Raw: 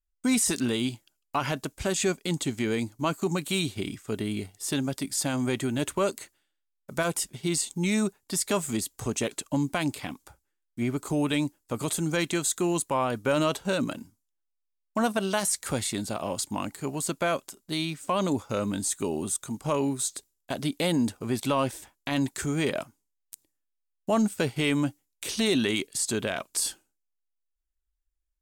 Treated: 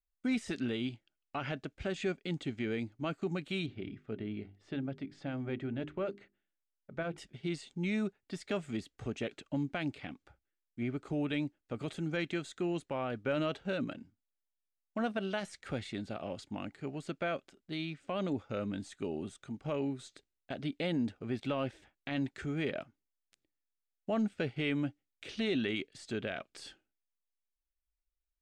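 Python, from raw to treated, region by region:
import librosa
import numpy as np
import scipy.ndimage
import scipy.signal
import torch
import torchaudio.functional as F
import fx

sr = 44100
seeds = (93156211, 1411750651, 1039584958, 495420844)

y = fx.chain(x, sr, fx.spacing_loss(db_at_10k=21),
    fx.hum_notches(base_hz=50, count=8), at=(3.66, 7.18))
y = scipy.signal.sosfilt(scipy.signal.cheby1(2, 1.0, 2600.0, 'lowpass', fs=sr, output='sos'), y)
y = fx.peak_eq(y, sr, hz=1000.0, db=-11.5, octaves=0.36)
y = y * 10.0 ** (-6.5 / 20.0)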